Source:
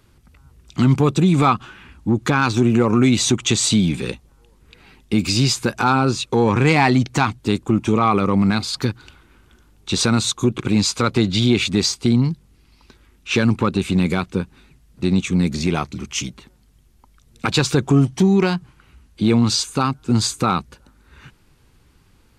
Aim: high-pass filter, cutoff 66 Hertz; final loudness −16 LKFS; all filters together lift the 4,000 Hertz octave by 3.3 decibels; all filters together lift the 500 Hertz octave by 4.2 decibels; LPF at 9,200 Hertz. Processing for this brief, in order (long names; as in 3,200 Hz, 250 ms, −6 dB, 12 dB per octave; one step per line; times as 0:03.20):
high-pass filter 66 Hz
low-pass filter 9,200 Hz
parametric band 500 Hz +5.5 dB
parametric band 4,000 Hz +4 dB
level +1 dB